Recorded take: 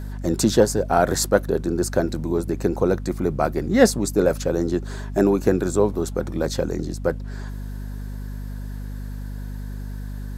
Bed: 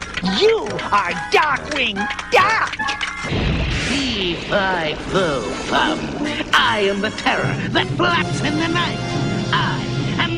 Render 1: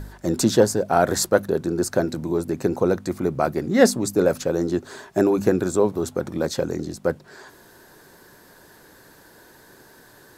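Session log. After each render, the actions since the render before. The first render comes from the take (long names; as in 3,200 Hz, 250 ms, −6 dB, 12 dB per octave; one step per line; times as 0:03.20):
hum removal 50 Hz, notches 5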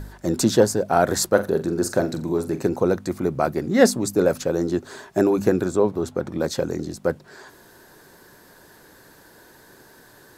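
0:01.30–0:02.69: flutter between parallel walls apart 7.4 metres, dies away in 0.24 s
0:05.65–0:06.40: high-shelf EQ 6,000 Hz −9 dB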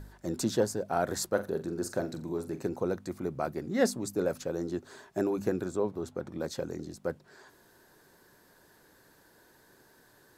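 level −11 dB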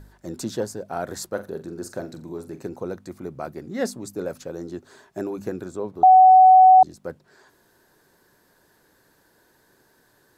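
0:06.03–0:06.83: beep over 749 Hz −7.5 dBFS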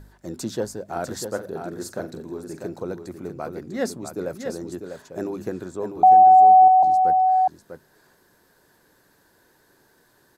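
single-tap delay 647 ms −7 dB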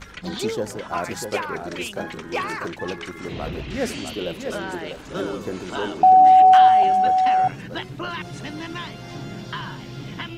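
mix in bed −13.5 dB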